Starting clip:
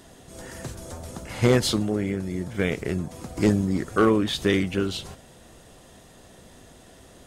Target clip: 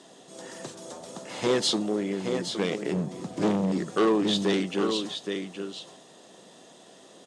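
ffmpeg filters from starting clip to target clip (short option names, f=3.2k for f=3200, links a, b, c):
-filter_complex "[0:a]asettb=1/sr,asplit=3[a][b][c];[a]atrim=end=2.934[d];[b]atrim=start=2.93:end=3.72,asetpts=PTS-STARTPTS,afade=t=in:d=0.004:c=qsin,afade=t=out:st=0.786:d=0.004:c=qsin,bass=f=250:g=11,treble=f=4k:g=-3[e];[c]atrim=start=3.716[f];[d][e]acrossfade=d=0.004:c1=hsin:c2=qsin[g];[g][f]acrossfade=d=0.004:c1=qsin:c2=hsin,aecho=1:1:819:0.376,asoftclip=type=hard:threshold=-17dB,highpass=f=190:w=0.5412,highpass=f=190:w=1.3066,equalizer=f=240:t=q:w=4:g=-5,equalizer=f=1.5k:t=q:w=4:g=-5,equalizer=f=2.2k:t=q:w=4:g=-5,equalizer=f=3.6k:t=q:w=4:g=3,lowpass=f=8.7k:w=0.5412,lowpass=f=8.7k:w=1.3066"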